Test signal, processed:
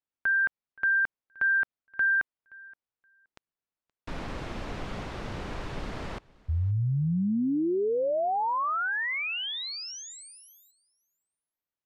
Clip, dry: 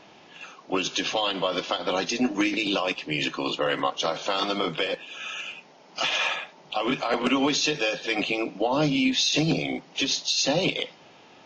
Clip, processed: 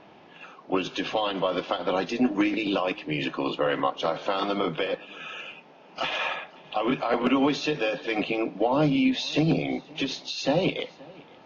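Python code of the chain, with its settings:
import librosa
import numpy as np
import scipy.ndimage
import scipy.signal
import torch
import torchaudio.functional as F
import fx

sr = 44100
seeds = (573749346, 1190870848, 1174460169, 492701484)

y = scipy.signal.sosfilt(scipy.signal.butter(2, 5000.0, 'lowpass', fs=sr, output='sos'), x)
y = fx.high_shelf(y, sr, hz=2700.0, db=-11.5)
y = fx.echo_feedback(y, sr, ms=523, feedback_pct=16, wet_db=-24)
y = F.gain(torch.from_numpy(y), 1.5).numpy()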